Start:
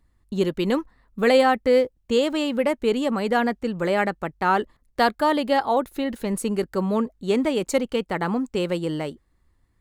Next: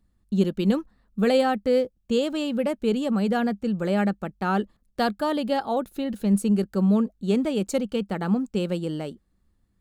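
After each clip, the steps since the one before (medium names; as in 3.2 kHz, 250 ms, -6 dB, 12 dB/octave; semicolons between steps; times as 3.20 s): graphic EQ with 31 bands 200 Hz +11 dB, 1 kHz -7 dB, 2 kHz -8 dB; trim -3.5 dB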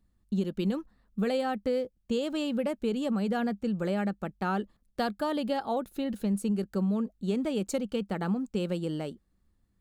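compression, threshold -22 dBFS, peak gain reduction 7.5 dB; trim -3 dB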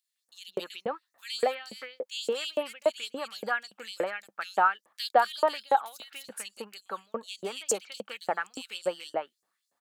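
bands offset in time highs, lows 160 ms, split 2.7 kHz; LFO high-pass saw up 3.5 Hz 530–7300 Hz; trim +5 dB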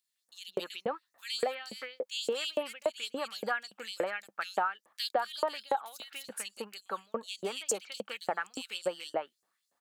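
compression 5:1, threshold -27 dBFS, peak gain reduction 10.5 dB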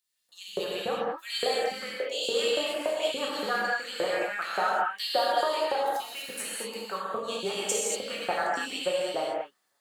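gated-style reverb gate 260 ms flat, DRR -5.5 dB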